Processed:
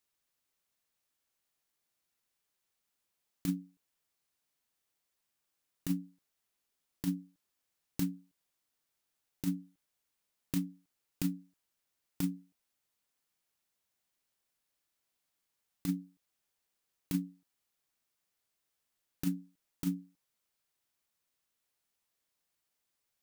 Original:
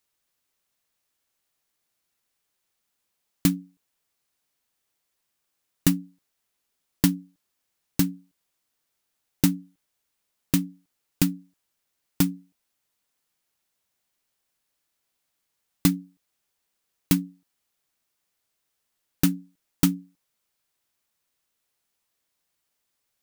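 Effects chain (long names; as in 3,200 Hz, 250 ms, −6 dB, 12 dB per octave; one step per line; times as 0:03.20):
compressor whose output falls as the input rises −21 dBFS, ratio −0.5
level −8.5 dB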